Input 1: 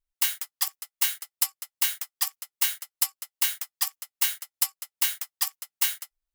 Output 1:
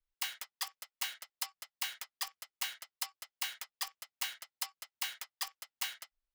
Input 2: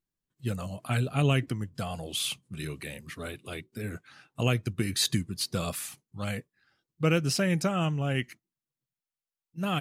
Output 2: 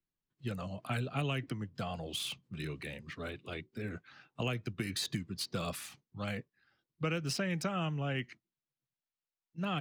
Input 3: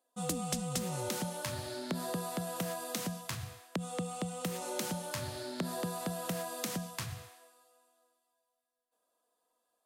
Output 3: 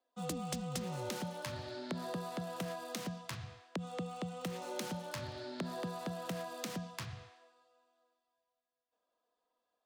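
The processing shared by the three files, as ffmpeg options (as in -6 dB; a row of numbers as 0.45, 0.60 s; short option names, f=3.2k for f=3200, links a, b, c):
-filter_complex "[0:a]acrossover=split=120|870|6100[a][b][c][d];[a]acompressor=threshold=-45dB:ratio=4[e];[b]acompressor=threshold=-31dB:ratio=4[f];[c]acompressor=threshold=-33dB:ratio=4[g];[d]acompressor=threshold=-38dB:ratio=4[h];[e][f][g][h]amix=inputs=4:normalize=0,acrossover=split=290|5800[i][j][k];[k]aeval=exprs='sgn(val(0))*max(abs(val(0))-0.00531,0)':c=same[l];[i][j][l]amix=inputs=3:normalize=0,volume=-3dB"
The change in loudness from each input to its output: -13.0, -7.5, -4.0 LU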